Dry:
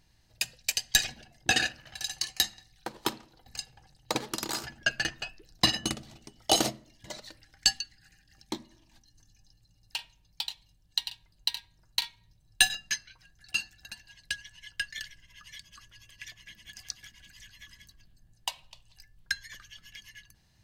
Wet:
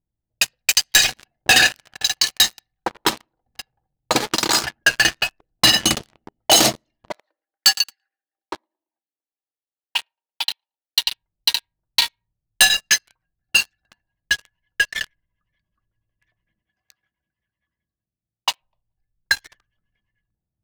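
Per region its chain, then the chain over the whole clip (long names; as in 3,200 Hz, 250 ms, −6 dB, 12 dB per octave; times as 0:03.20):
0:07.12–0:11.03: Bessel high-pass filter 580 Hz, order 6 + repeating echo 113 ms, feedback 52%, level −24 dB
0:16.62–0:18.61: high-pass filter 61 Hz + low-shelf EQ 310 Hz −9 dB + double-tracking delay 15 ms −12.5 dB
whole clip: low-pass that shuts in the quiet parts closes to 410 Hz, open at −28.5 dBFS; leveller curve on the samples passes 5; low-shelf EQ 420 Hz −7 dB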